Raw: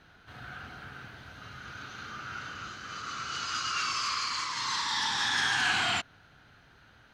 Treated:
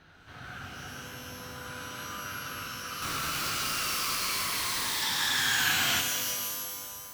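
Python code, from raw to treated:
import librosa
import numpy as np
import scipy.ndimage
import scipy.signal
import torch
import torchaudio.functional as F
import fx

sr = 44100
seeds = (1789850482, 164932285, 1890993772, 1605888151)

y = fx.schmitt(x, sr, flips_db=-43.5, at=(3.02, 5.02))
y = fx.dynamic_eq(y, sr, hz=790.0, q=1.0, threshold_db=-44.0, ratio=4.0, max_db=-6)
y = fx.rev_shimmer(y, sr, seeds[0], rt60_s=2.0, semitones=12, shimmer_db=-2, drr_db=3.5)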